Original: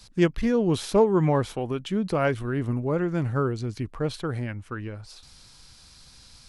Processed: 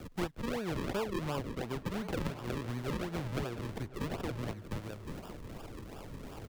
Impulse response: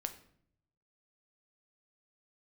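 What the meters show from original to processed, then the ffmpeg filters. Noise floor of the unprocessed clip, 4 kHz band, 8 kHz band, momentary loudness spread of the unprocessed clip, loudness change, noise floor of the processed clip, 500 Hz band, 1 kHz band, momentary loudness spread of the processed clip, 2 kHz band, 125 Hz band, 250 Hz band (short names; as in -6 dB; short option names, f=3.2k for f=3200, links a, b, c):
-52 dBFS, -7.0 dB, -8.0 dB, 12 LU, -13.0 dB, -49 dBFS, -14.0 dB, -10.0 dB, 11 LU, -8.5 dB, -11.0 dB, -12.0 dB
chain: -filter_complex "[0:a]tiltshelf=f=820:g=-8.5,acrusher=samples=42:mix=1:aa=0.000001:lfo=1:lforange=42:lforate=2.8,lowshelf=f=110:g=9.5,acrossover=split=110|590|4800[a][b][c][d];[a]acompressor=threshold=-42dB:ratio=4[e];[b]acompressor=threshold=-32dB:ratio=4[f];[c]acompressor=threshold=-37dB:ratio=4[g];[d]acompressor=threshold=-51dB:ratio=4[h];[e][f][g][h]amix=inputs=4:normalize=0,acrusher=bits=11:mix=0:aa=0.000001,asplit=2[i][j];[j]adelay=1059,lowpass=f=2.3k:p=1,volume=-15dB,asplit=2[k][l];[l]adelay=1059,lowpass=f=2.3k:p=1,volume=0.51,asplit=2[m][n];[n]adelay=1059,lowpass=f=2.3k:p=1,volume=0.51,asplit=2[o][p];[p]adelay=1059,lowpass=f=2.3k:p=1,volume=0.51,asplit=2[q][r];[r]adelay=1059,lowpass=f=2.3k:p=1,volume=0.51[s];[i][k][m][o][q][s]amix=inputs=6:normalize=0,volume=-3.5dB"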